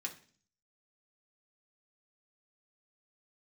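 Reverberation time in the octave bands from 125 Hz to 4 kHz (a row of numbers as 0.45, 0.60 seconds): 0.70, 0.65, 0.50, 0.40, 0.45, 0.50 seconds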